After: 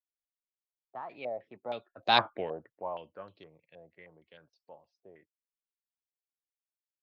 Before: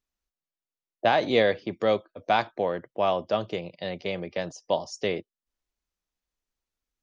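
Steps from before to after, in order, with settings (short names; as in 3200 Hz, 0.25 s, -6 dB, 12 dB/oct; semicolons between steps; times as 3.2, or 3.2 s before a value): Doppler pass-by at 2.2, 32 m/s, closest 2.4 m; stepped low-pass 6.4 Hz 720–4000 Hz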